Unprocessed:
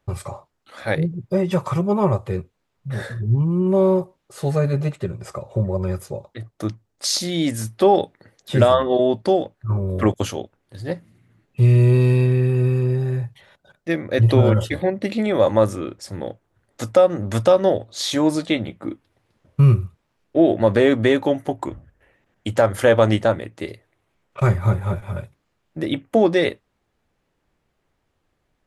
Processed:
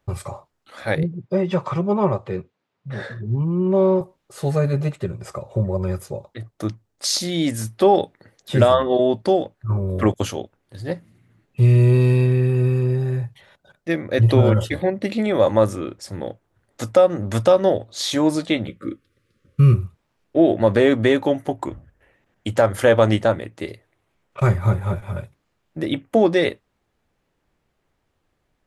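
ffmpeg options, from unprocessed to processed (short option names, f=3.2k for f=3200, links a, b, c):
-filter_complex "[0:a]asettb=1/sr,asplit=3[a][b][c];[a]atrim=end=1.034[d];[b]atrim=start=1.03:end=4.01,asetpts=PTS-STARTPTS,afade=t=in:d=0.004:c=qsin,afade=t=out:st=2.976:d=0.004:c=qsin,highpass=140,lowpass=4.7k[e];[c]atrim=start=4.006[f];[d][e]acrossfade=d=0.004:c1=hsin:c2=qsin[g];[g][f]acrossfade=d=0.004:c1=qsin:c2=hsin,asettb=1/sr,asplit=3[h][i][j];[h]atrim=end=18.674[k];[i]atrim=start=18.67:end=19.74,asetpts=PTS-STARTPTS,afade=t=in:d=0.004:c=qsin,afade=t=out:st=1.066:d=0.004:c=qsin,asuperstop=centerf=790:order=20:qfactor=1.5[l];[j]atrim=start=19.736[m];[k][l]acrossfade=d=0.004:c1=hsin:c2=qsin[n];[n][m]acrossfade=d=0.004:c1=qsin:c2=hsin"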